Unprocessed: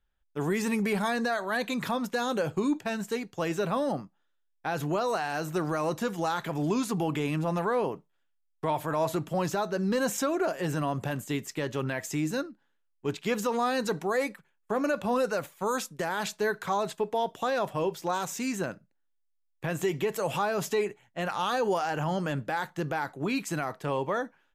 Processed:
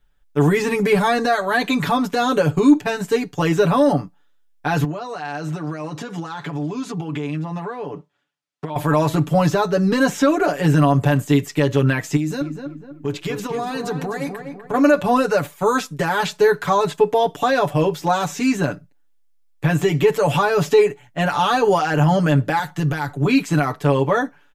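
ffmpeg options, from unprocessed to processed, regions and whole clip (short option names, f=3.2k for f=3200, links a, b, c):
-filter_complex "[0:a]asettb=1/sr,asplit=3[a][b][c];[a]atrim=end=4.844[d];[b]atrim=start=4.84:end=8.76,asetpts=PTS-STARTPTS,afade=t=in:d=0.004:c=qsin,afade=t=out:st=3.916:d=0.004:c=qsin,acompressor=threshold=-36dB:ratio=8:attack=3.2:release=140:knee=1:detection=peak,highpass=110,lowpass=6.3k[e];[c]atrim=start=8.756[f];[d][e]acrossfade=d=0.004:c1=hsin:c2=qsin[g];[g][f]acrossfade=d=0.004:c1=qsin:c2=hsin,asettb=1/sr,asplit=3[h][i][j];[h]atrim=end=12.164[k];[i]atrim=start=12.16:end=14.74,asetpts=PTS-STARTPTS,afade=t=in:d=0.004:c=qsin,afade=t=out:st=2.576:d=0.004:c=qsin,acompressor=threshold=-34dB:ratio=5:attack=3.2:release=140:knee=1:detection=peak,asplit=2[l][m];[m]adelay=249,lowpass=f=1.7k:p=1,volume=-6dB,asplit=2[n][o];[o]adelay=249,lowpass=f=1.7k:p=1,volume=0.43,asplit=2[p][q];[q]adelay=249,lowpass=f=1.7k:p=1,volume=0.43,asplit=2[r][s];[s]adelay=249,lowpass=f=1.7k:p=1,volume=0.43,asplit=2[t][u];[u]adelay=249,lowpass=f=1.7k:p=1,volume=0.43[v];[l][n][p][r][t][v]amix=inputs=6:normalize=0,atrim=end_sample=113778[w];[j]atrim=start=14.736[x];[k][w]acrossfade=d=0.004:c1=hsin:c2=qsin[y];[y][x]acrossfade=d=0.004:c1=qsin:c2=hsin,asettb=1/sr,asplit=3[z][aa][ab];[z]atrim=end=22.594[ac];[aa]atrim=start=22.59:end=23.25,asetpts=PTS-STARTPTS,afade=t=in:d=0.004:c=qsin,afade=t=out:st=0.656:d=0.004:c=qsin,acrossover=split=140|3000[ad][ae][af];[ae]acompressor=threshold=-41dB:ratio=1.5:attack=3.2:release=140:knee=2.83:detection=peak[ag];[ad][ag][af]amix=inputs=3:normalize=0,asubboost=boost=6.5:cutoff=190[ah];[ab]atrim=start=23.246[ai];[ac][ah]acrossfade=d=0.004:c1=hsin:c2=qsin[aj];[aj][ai]acrossfade=d=0.004:c1=qsin:c2=hsin,lowshelf=f=260:g=4.5,acrossover=split=5000[ak][al];[al]acompressor=threshold=-47dB:ratio=4:attack=1:release=60[am];[ak][am]amix=inputs=2:normalize=0,aecho=1:1:6.9:0.92,volume=8dB"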